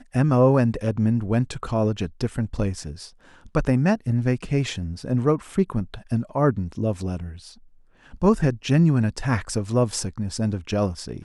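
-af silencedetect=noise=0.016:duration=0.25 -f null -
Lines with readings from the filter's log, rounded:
silence_start: 3.08
silence_end: 3.46 | silence_duration: 0.38
silence_start: 7.51
silence_end: 8.14 | silence_duration: 0.62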